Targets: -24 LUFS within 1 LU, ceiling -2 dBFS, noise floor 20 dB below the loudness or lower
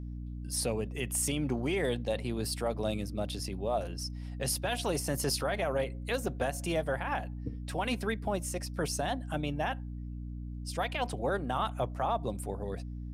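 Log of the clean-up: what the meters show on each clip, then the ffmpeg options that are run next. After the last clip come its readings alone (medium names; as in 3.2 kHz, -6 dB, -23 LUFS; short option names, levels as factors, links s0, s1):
hum 60 Hz; highest harmonic 300 Hz; hum level -37 dBFS; loudness -33.5 LUFS; peak level -19.5 dBFS; loudness target -24.0 LUFS
-> -af "bandreject=f=60:t=h:w=6,bandreject=f=120:t=h:w=6,bandreject=f=180:t=h:w=6,bandreject=f=240:t=h:w=6,bandreject=f=300:t=h:w=6"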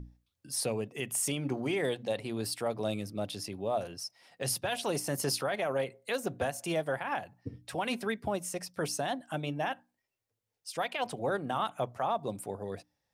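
hum not found; loudness -34.0 LUFS; peak level -20.5 dBFS; loudness target -24.0 LUFS
-> -af "volume=3.16"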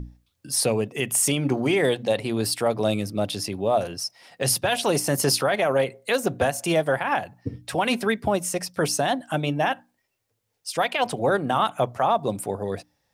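loudness -24.0 LUFS; peak level -10.5 dBFS; noise floor -75 dBFS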